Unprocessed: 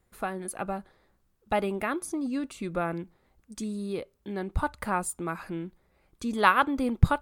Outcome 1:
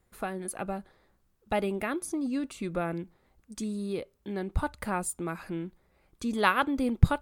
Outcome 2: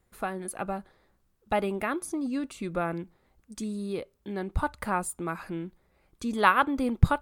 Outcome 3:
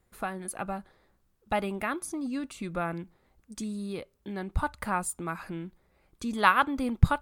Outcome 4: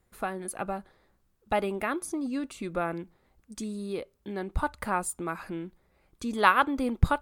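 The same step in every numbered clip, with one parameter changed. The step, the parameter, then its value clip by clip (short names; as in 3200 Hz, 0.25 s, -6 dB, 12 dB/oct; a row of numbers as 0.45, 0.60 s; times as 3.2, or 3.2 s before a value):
dynamic EQ, frequency: 1100, 5700, 420, 130 Hz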